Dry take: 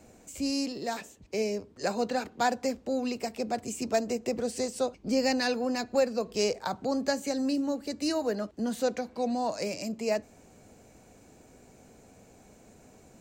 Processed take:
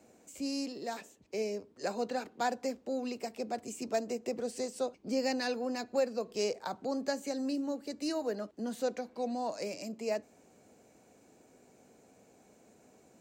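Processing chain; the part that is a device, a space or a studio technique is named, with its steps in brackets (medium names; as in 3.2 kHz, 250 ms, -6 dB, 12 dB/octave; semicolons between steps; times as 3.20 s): filter by subtraction (in parallel: low-pass 330 Hz 12 dB/octave + polarity flip); on the sum: trim -6.5 dB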